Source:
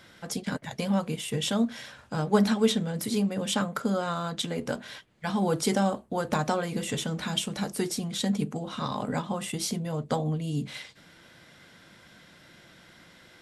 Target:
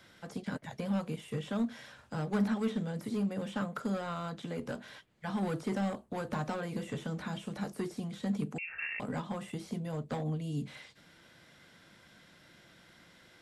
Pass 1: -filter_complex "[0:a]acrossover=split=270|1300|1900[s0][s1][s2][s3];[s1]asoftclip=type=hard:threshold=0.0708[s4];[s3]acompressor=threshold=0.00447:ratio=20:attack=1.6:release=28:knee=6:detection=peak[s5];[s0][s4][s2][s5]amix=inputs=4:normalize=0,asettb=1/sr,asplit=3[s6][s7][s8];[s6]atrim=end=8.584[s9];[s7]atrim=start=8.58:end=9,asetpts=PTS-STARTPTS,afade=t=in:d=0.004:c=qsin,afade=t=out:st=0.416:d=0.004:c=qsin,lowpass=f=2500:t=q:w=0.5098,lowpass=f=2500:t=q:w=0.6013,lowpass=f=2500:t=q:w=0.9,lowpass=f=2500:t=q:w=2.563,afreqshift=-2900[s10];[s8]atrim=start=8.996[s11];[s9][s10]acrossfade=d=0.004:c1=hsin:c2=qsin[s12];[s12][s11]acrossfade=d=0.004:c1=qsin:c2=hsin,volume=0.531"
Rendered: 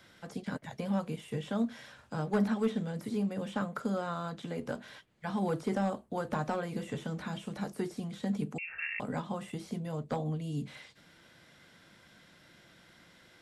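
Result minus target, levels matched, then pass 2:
hard clipper: distortion -8 dB
-filter_complex "[0:a]acrossover=split=270|1300|1900[s0][s1][s2][s3];[s1]asoftclip=type=hard:threshold=0.0282[s4];[s3]acompressor=threshold=0.00447:ratio=20:attack=1.6:release=28:knee=6:detection=peak[s5];[s0][s4][s2][s5]amix=inputs=4:normalize=0,asettb=1/sr,asplit=3[s6][s7][s8];[s6]atrim=end=8.584[s9];[s7]atrim=start=8.58:end=9,asetpts=PTS-STARTPTS,afade=t=in:d=0.004:c=qsin,afade=t=out:st=0.416:d=0.004:c=qsin,lowpass=f=2500:t=q:w=0.5098,lowpass=f=2500:t=q:w=0.6013,lowpass=f=2500:t=q:w=0.9,lowpass=f=2500:t=q:w=2.563,afreqshift=-2900[s10];[s8]atrim=start=8.996[s11];[s9][s10]acrossfade=d=0.004:c1=hsin:c2=qsin[s12];[s12][s11]acrossfade=d=0.004:c1=qsin:c2=hsin,volume=0.531"

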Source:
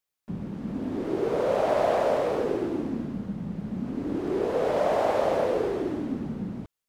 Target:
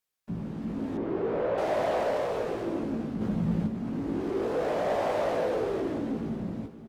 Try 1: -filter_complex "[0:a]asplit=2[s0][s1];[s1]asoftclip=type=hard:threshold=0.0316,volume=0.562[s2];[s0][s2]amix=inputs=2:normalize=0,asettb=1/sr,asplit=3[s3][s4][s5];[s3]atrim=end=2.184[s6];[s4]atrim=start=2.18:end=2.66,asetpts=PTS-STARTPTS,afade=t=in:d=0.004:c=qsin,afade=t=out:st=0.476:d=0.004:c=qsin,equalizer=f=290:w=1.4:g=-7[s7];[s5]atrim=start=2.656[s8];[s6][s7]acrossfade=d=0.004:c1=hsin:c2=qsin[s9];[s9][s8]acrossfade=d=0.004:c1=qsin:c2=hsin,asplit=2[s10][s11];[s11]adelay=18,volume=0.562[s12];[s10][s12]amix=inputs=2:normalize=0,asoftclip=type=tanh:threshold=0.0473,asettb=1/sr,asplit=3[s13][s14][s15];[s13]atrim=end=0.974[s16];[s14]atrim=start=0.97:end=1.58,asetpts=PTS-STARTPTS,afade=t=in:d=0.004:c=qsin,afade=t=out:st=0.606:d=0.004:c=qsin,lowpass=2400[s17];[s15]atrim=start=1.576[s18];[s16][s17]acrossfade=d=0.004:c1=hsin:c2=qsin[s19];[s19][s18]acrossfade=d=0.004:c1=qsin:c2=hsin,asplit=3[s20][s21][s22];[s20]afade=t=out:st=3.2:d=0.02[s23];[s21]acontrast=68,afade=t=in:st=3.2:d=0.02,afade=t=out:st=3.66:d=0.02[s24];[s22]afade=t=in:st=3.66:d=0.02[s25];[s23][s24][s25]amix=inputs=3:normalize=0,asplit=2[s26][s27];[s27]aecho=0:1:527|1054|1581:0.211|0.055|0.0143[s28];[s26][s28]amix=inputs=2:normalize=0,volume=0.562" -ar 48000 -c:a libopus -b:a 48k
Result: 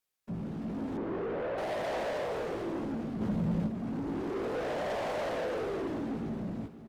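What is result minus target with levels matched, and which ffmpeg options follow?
saturation: distortion +11 dB
-filter_complex "[0:a]asplit=2[s0][s1];[s1]asoftclip=type=hard:threshold=0.0316,volume=0.562[s2];[s0][s2]amix=inputs=2:normalize=0,asettb=1/sr,asplit=3[s3][s4][s5];[s3]atrim=end=2.184[s6];[s4]atrim=start=2.18:end=2.66,asetpts=PTS-STARTPTS,afade=t=in:d=0.004:c=qsin,afade=t=out:st=0.476:d=0.004:c=qsin,equalizer=f=290:w=1.4:g=-7[s7];[s5]atrim=start=2.656[s8];[s6][s7]acrossfade=d=0.004:c1=hsin:c2=qsin[s9];[s9][s8]acrossfade=d=0.004:c1=qsin:c2=hsin,asplit=2[s10][s11];[s11]adelay=18,volume=0.562[s12];[s10][s12]amix=inputs=2:normalize=0,asoftclip=type=tanh:threshold=0.168,asettb=1/sr,asplit=3[s13][s14][s15];[s13]atrim=end=0.974[s16];[s14]atrim=start=0.97:end=1.58,asetpts=PTS-STARTPTS,afade=t=in:d=0.004:c=qsin,afade=t=out:st=0.606:d=0.004:c=qsin,lowpass=2400[s17];[s15]atrim=start=1.576[s18];[s16][s17]acrossfade=d=0.004:c1=hsin:c2=qsin[s19];[s19][s18]acrossfade=d=0.004:c1=qsin:c2=hsin,asplit=3[s20][s21][s22];[s20]afade=t=out:st=3.2:d=0.02[s23];[s21]acontrast=68,afade=t=in:st=3.2:d=0.02,afade=t=out:st=3.66:d=0.02[s24];[s22]afade=t=in:st=3.66:d=0.02[s25];[s23][s24][s25]amix=inputs=3:normalize=0,asplit=2[s26][s27];[s27]aecho=0:1:527|1054|1581:0.211|0.055|0.0143[s28];[s26][s28]amix=inputs=2:normalize=0,volume=0.562" -ar 48000 -c:a libopus -b:a 48k

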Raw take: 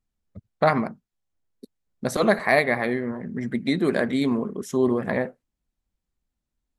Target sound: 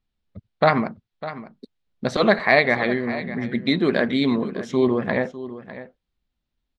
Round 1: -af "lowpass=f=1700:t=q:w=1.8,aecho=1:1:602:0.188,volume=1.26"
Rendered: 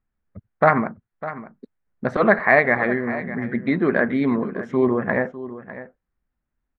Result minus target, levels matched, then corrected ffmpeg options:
4 kHz band -18.0 dB
-af "lowpass=f=3800:t=q:w=1.8,aecho=1:1:602:0.188,volume=1.26"

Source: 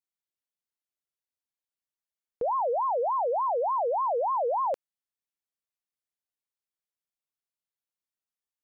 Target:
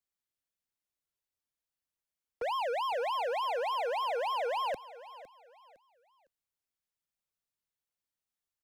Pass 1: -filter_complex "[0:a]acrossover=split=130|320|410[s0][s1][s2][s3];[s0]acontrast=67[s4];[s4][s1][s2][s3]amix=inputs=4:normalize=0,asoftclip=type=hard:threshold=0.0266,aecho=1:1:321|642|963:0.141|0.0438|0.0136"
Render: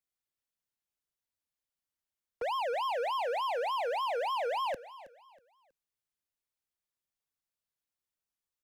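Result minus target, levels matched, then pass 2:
echo 187 ms early
-filter_complex "[0:a]acrossover=split=130|320|410[s0][s1][s2][s3];[s0]acontrast=67[s4];[s4][s1][s2][s3]amix=inputs=4:normalize=0,asoftclip=type=hard:threshold=0.0266,aecho=1:1:508|1016|1524:0.141|0.0438|0.0136"

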